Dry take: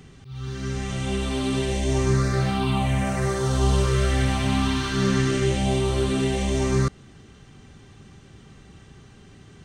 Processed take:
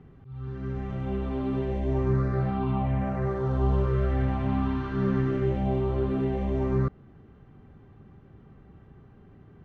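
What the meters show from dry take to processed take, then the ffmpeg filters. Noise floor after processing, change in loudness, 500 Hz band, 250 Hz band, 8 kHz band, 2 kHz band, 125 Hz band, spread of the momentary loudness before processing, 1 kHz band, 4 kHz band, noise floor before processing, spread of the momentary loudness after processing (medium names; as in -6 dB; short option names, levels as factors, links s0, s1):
-53 dBFS, -4.0 dB, -3.5 dB, -3.5 dB, under -30 dB, -11.5 dB, -3.5 dB, 7 LU, -5.0 dB, -22.0 dB, -49 dBFS, 7 LU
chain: -af "lowpass=1200,volume=0.668"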